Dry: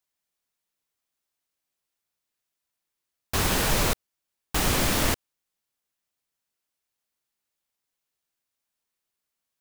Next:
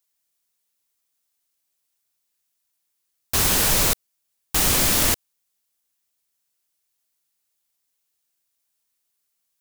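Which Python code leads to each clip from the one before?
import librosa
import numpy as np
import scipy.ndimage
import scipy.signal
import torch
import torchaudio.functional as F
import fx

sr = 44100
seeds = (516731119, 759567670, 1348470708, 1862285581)

y = fx.high_shelf(x, sr, hz=4100.0, db=10.5)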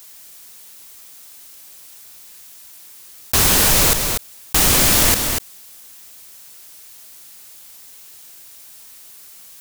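y = x + 10.0 ** (-12.5 / 20.0) * np.pad(x, (int(242 * sr / 1000.0), 0))[:len(x)]
y = fx.env_flatten(y, sr, amount_pct=50)
y = y * 10.0 ** (4.0 / 20.0)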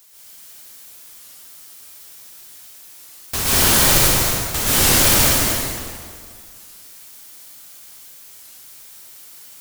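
y = fx.rev_plate(x, sr, seeds[0], rt60_s=2.0, hf_ratio=0.8, predelay_ms=110, drr_db=-8.5)
y = fx.record_warp(y, sr, rpm=33.33, depth_cents=160.0)
y = y * 10.0 ** (-8.0 / 20.0)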